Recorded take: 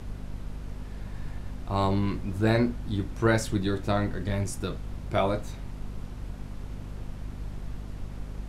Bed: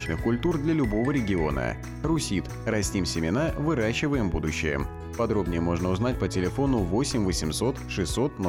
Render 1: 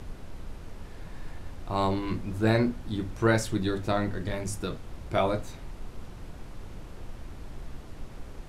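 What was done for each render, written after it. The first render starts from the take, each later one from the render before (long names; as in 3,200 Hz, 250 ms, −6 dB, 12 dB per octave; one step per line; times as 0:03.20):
mains-hum notches 50/100/150/200/250 Hz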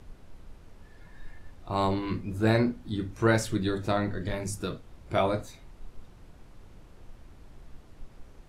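noise reduction from a noise print 9 dB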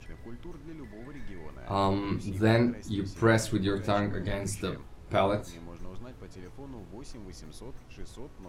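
mix in bed −20.5 dB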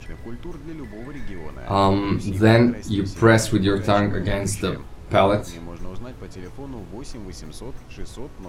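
level +9 dB
brickwall limiter −3 dBFS, peak gain reduction 1 dB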